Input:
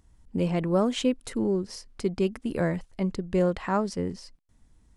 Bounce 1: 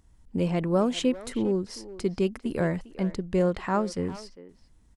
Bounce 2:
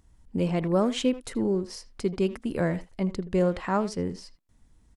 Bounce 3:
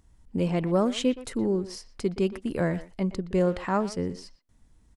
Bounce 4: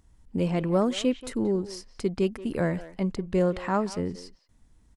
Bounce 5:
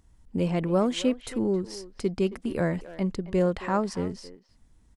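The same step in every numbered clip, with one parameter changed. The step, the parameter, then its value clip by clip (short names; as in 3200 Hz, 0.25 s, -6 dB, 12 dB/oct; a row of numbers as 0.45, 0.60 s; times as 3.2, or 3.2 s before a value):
speakerphone echo, time: 400, 80, 120, 180, 270 ms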